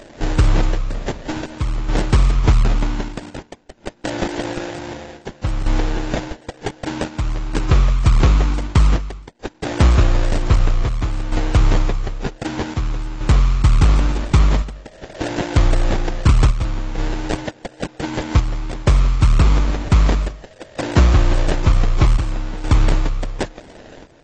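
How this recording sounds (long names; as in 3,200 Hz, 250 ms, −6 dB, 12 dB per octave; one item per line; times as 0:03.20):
aliases and images of a low sample rate 1,200 Hz, jitter 20%
chopped level 0.53 Hz, depth 60%, duty 75%
AAC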